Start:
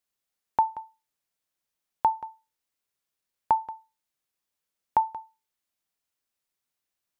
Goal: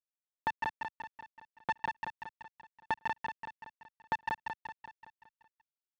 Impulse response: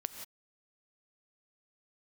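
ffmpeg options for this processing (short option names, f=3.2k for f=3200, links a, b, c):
-af "afftfilt=real='re*gte(hypot(re,im),0.0316)':imag='im*gte(hypot(re,im),0.0316)':win_size=1024:overlap=0.75,aecho=1:1:4.2:0.73,acompressor=threshold=-22dB:ratio=20,alimiter=level_in=0.5dB:limit=-24dB:level=0:latency=1:release=336,volume=-0.5dB,adynamicsmooth=sensitivity=7:basefreq=780,acrusher=bits=3:dc=4:mix=0:aa=0.000001,atempo=1.2,highpass=130,lowpass=2.1k,aecho=1:1:189|378|567|756|945|1134|1323:0.668|0.354|0.188|0.0995|0.0527|0.0279|0.0148,volume=8.5dB"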